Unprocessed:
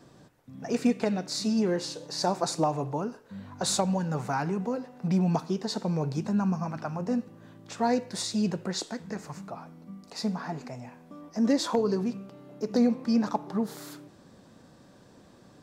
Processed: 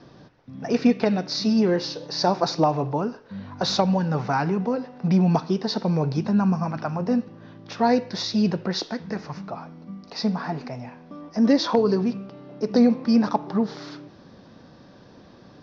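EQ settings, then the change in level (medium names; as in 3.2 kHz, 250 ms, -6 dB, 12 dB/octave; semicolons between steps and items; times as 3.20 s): steep low-pass 5.8 kHz 72 dB/octave; +6.0 dB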